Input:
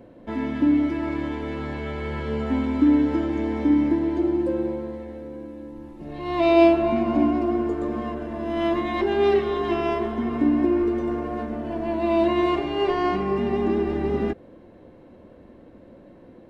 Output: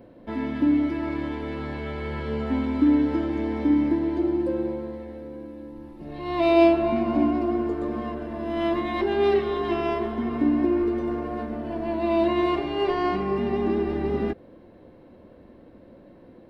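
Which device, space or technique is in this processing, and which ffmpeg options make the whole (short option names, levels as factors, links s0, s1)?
exciter from parts: -filter_complex "[0:a]asplit=2[s0][s1];[s1]highpass=f=3500:w=0.5412,highpass=f=3500:w=1.3066,asoftclip=type=tanh:threshold=0.0112,highpass=f=4600:w=0.5412,highpass=f=4600:w=1.3066,volume=0.501[s2];[s0][s2]amix=inputs=2:normalize=0,volume=0.841"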